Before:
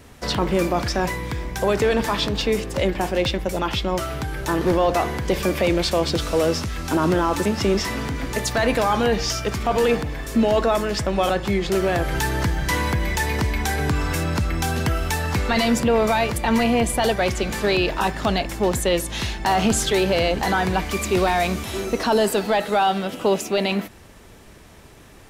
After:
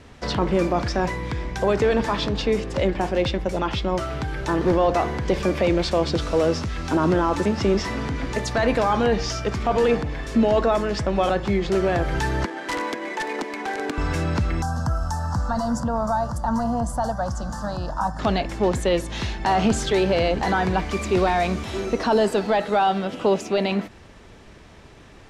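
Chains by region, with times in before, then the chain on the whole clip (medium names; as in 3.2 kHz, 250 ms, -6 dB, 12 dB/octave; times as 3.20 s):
12.45–13.98 s: median filter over 9 samples + steep high-pass 260 Hz + integer overflow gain 16 dB
14.62–18.19 s: high-order bell 2.8 kHz -12.5 dB 1.3 oct + static phaser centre 970 Hz, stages 4
whole clip: low-pass 5.6 kHz 12 dB/octave; dynamic bell 3.1 kHz, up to -4 dB, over -36 dBFS, Q 0.73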